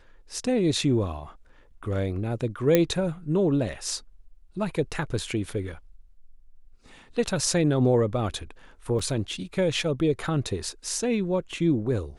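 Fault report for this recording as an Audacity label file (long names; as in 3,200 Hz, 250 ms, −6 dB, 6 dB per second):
2.750000	2.750000	click −6 dBFS
8.990000	8.990000	drop-out 4.4 ms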